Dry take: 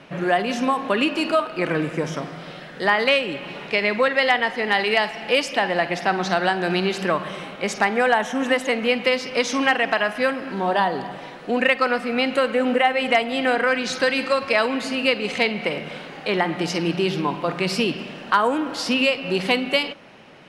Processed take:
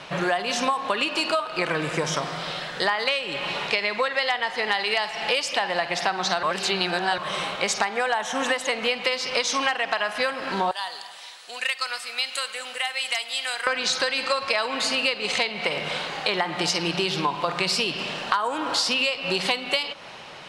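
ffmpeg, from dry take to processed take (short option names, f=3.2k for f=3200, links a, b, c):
-filter_complex "[0:a]asettb=1/sr,asplit=3[a][b][c];[a]atrim=end=10.714[d];[b]atrim=start=10.71:end=13.67,asetpts=PTS-STARTPTS,afade=t=in:d=0.004:c=qsin,afade=t=out:st=2.956:d=0.004:c=qsin,aderivative[e];[c]atrim=start=13.666[f];[d][e]acrossfade=d=0.004:c1=hsin:c2=qsin[g];[g][f]acrossfade=d=0.004:c1=qsin:c2=hsin,asplit=3[h][i][j];[h]atrim=end=6.432[k];[i]atrim=start=6.428:end=7.182,asetpts=PTS-STARTPTS,areverse[l];[j]atrim=start=7.178[m];[k][l]acrossfade=d=0.004:c1=hsin:c2=hsin[n];[n][m]acrossfade=d=0.004:c1=hsin:c2=hsin,equalizer=f=250:t=o:w=1:g=-8,equalizer=f=1k:t=o:w=1:g=6,equalizer=f=4k:t=o:w=1:g=8,equalizer=f=8k:t=o:w=1:g=8,acompressor=threshold=-24dB:ratio=6,volume=3dB"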